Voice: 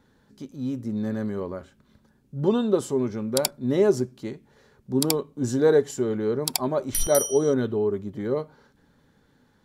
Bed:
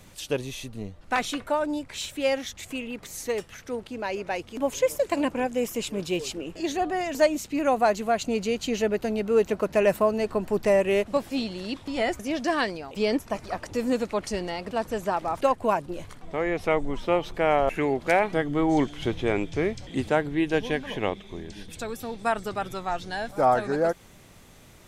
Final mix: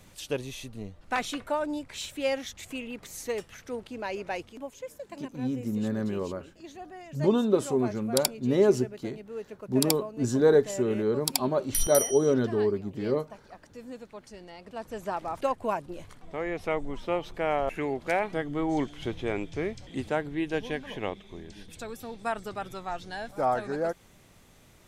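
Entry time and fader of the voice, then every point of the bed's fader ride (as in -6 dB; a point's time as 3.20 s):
4.80 s, -1.5 dB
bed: 4.42 s -3.5 dB
4.74 s -17 dB
14.34 s -17 dB
15.12 s -5.5 dB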